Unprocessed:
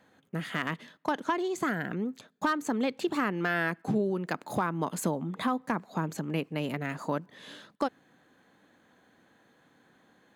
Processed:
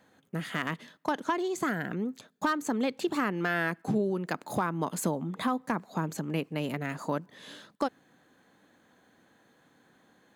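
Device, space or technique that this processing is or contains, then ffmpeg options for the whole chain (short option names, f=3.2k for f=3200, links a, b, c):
exciter from parts: -filter_complex "[0:a]asplit=2[a][b];[b]highpass=3.7k,asoftclip=type=tanh:threshold=-38.5dB,volume=-7dB[c];[a][c]amix=inputs=2:normalize=0"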